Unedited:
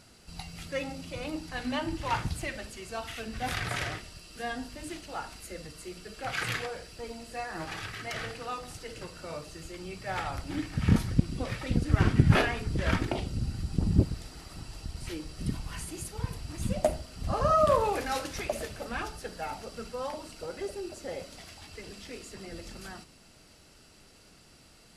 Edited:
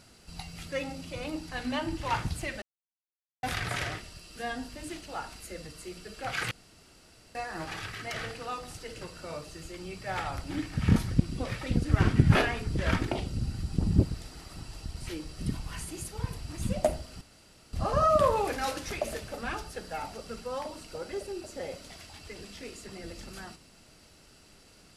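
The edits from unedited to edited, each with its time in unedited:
0:02.62–0:03.43: silence
0:06.51–0:07.35: fill with room tone
0:17.21: splice in room tone 0.52 s

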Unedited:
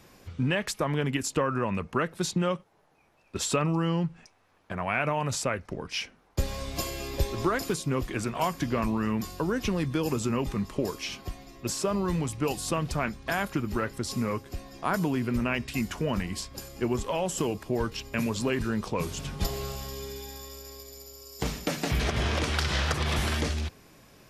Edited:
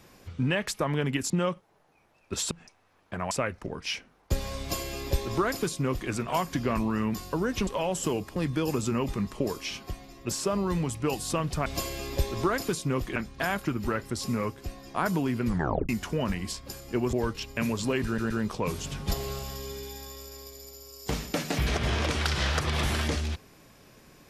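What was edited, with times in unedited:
0:01.30–0:02.33: remove
0:03.54–0:04.09: remove
0:04.89–0:05.38: remove
0:06.67–0:08.17: duplicate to 0:13.04
0:15.34: tape stop 0.43 s
0:17.01–0:17.70: move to 0:09.74
0:18.63: stutter 0.12 s, 3 plays

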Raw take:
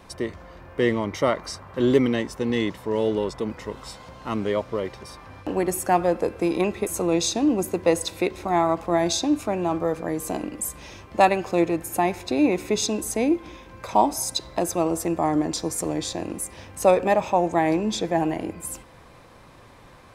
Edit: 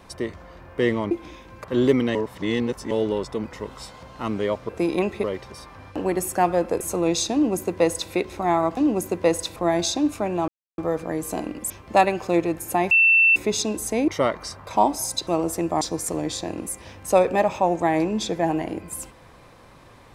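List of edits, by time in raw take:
0:01.11–0:01.70: swap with 0:13.32–0:13.85
0:02.21–0:02.97: reverse
0:06.31–0:06.86: move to 0:04.75
0:07.39–0:08.18: duplicate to 0:08.83
0:09.75: splice in silence 0.30 s
0:10.67–0:10.94: remove
0:12.15–0:12.60: beep over 2,680 Hz −12.5 dBFS
0:14.45–0:14.74: remove
0:15.28–0:15.53: remove

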